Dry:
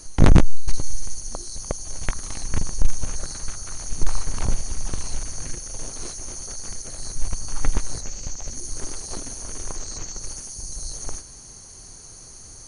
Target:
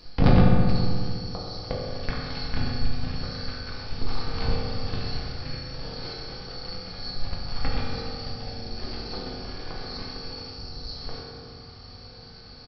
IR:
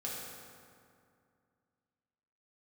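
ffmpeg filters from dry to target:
-filter_complex "[0:a]crystalizer=i=2:c=0,aresample=11025,volume=9.5dB,asoftclip=hard,volume=-9.5dB,aresample=44100[a];[1:a]atrim=start_sample=2205[b];[a][b]afir=irnorm=-1:irlink=0"

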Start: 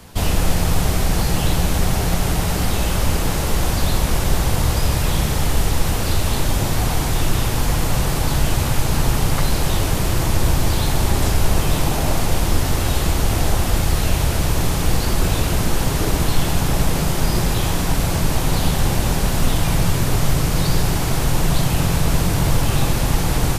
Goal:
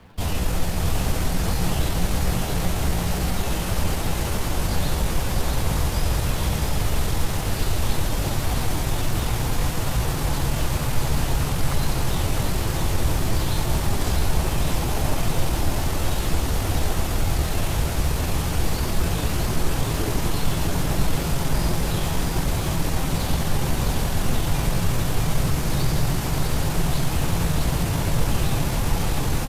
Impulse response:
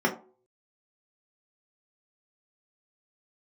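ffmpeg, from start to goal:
-filter_complex "[0:a]acrossover=split=540|3700[a][b][c];[c]aeval=exprs='sgn(val(0))*max(abs(val(0))-0.00376,0)':c=same[d];[a][b][d]amix=inputs=3:normalize=0,atempo=0.8,aecho=1:1:655:0.631,volume=-5.5dB"

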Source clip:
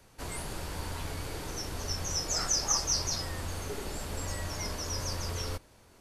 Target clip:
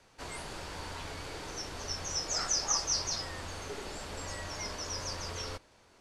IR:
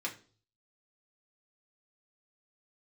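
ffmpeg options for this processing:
-af "lowpass=6.8k,lowshelf=f=290:g=-8.5"

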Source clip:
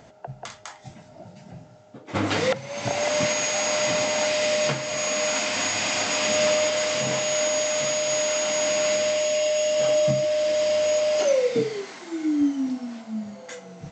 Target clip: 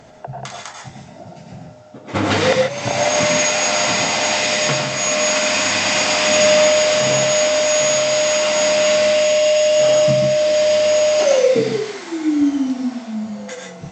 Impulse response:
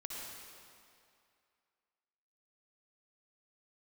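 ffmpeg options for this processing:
-filter_complex "[1:a]atrim=start_sample=2205,atrim=end_sample=4410,asetrate=27783,aresample=44100[a];[0:a][a]afir=irnorm=-1:irlink=0,volume=9dB"

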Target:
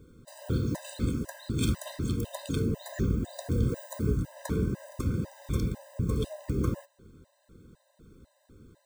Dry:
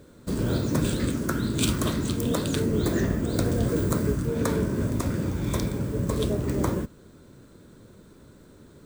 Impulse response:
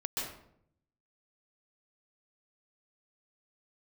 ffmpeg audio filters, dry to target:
-af "lowshelf=f=140:g=9,afftfilt=real='re*gt(sin(2*PI*2*pts/sr)*(1-2*mod(floor(b*sr/1024/520),2)),0)':imag='im*gt(sin(2*PI*2*pts/sr)*(1-2*mod(floor(b*sr/1024/520),2)),0)':win_size=1024:overlap=0.75,volume=-6dB"

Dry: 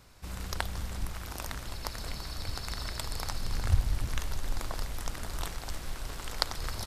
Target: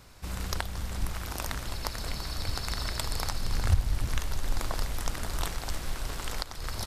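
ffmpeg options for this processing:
-af "alimiter=limit=-15.5dB:level=0:latency=1:release=486,volume=4dB"

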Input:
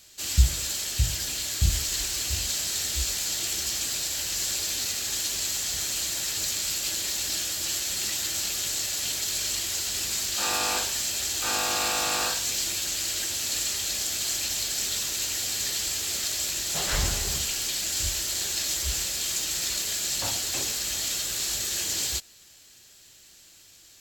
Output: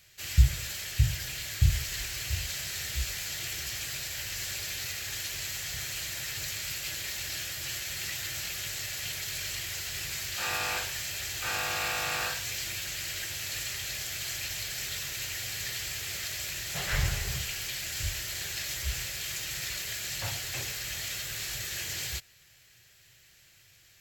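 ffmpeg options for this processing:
-af "equalizer=f=125:t=o:w=1:g=11,equalizer=f=250:t=o:w=1:g=-12,equalizer=f=1k:t=o:w=1:g=-4,equalizer=f=2k:t=o:w=1:g=7,equalizer=f=4k:t=o:w=1:g=-4,equalizer=f=8k:t=o:w=1:g=-7,volume=-3dB"

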